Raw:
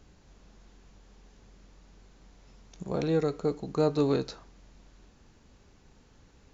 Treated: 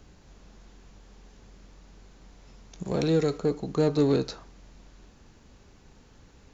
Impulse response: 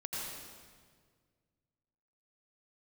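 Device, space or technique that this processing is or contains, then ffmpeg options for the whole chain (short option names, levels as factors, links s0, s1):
one-band saturation: -filter_complex "[0:a]asettb=1/sr,asplit=3[s0][s1][s2];[s0]atrim=end=2.854[s3];[s1]atrim=start=2.85:end=3.38,asetpts=PTS-STARTPTS,afade=t=in:d=0.004:c=qsin,afade=t=out:st=0.526:d=0.004:c=qsin,highshelf=f=2000:g=5.5[s4];[s2]atrim=start=3.376[s5];[s3][s4]acrossfade=d=0.004:c1=hsin:c2=qsin[s6];[s6][s5]acrossfade=d=0.004:c1=qsin:c2=hsin,acrossover=split=490|3400[s7][s8][s9];[s8]asoftclip=type=tanh:threshold=0.0188[s10];[s7][s10][s9]amix=inputs=3:normalize=0,volume=1.58"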